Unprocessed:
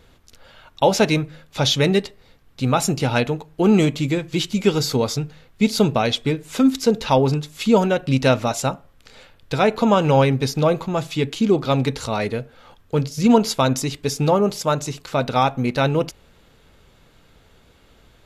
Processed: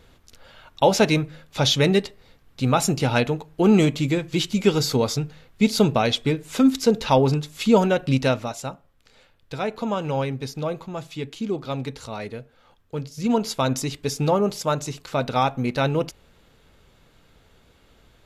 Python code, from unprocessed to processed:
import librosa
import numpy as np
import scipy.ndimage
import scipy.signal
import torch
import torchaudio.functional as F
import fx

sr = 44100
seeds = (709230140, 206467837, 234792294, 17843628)

y = fx.gain(x, sr, db=fx.line((8.1, -1.0), (8.56, -9.5), (13.06, -9.5), (13.77, -3.0)))